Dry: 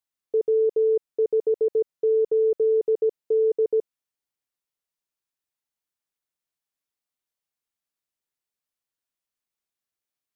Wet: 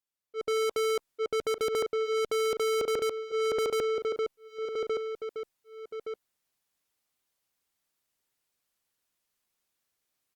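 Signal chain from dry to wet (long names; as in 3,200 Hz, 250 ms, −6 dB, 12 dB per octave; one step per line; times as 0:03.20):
leveller curve on the samples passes 3
volume swells 411 ms
on a send: repeating echo 1,169 ms, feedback 29%, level −19.5 dB
on the sum: soft clipping −35.5 dBFS, distortion −5 dB
automatic gain control gain up to 14 dB
brickwall limiter −27 dBFS, peak gain reduction 5.5 dB
Opus 64 kbit/s 48,000 Hz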